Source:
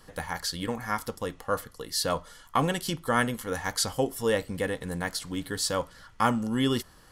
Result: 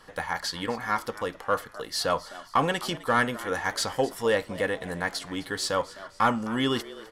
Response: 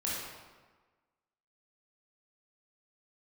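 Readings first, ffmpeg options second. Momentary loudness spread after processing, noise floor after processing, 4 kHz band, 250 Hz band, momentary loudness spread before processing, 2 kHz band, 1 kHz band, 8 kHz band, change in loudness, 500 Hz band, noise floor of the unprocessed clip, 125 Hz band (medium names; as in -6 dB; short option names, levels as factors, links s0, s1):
7 LU, -51 dBFS, +1.0 dB, -1.5 dB, 7 LU, +3.5 dB, +3.0 dB, -3.0 dB, +1.0 dB, +2.0 dB, -54 dBFS, -3.5 dB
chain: -filter_complex "[0:a]asplit=4[s0][s1][s2][s3];[s1]adelay=258,afreqshift=99,volume=0.112[s4];[s2]adelay=516,afreqshift=198,volume=0.0473[s5];[s3]adelay=774,afreqshift=297,volume=0.0197[s6];[s0][s4][s5][s6]amix=inputs=4:normalize=0,asplit=2[s7][s8];[s8]highpass=f=720:p=1,volume=3.55,asoftclip=type=tanh:threshold=0.316[s9];[s7][s9]amix=inputs=2:normalize=0,lowpass=f=2600:p=1,volume=0.501"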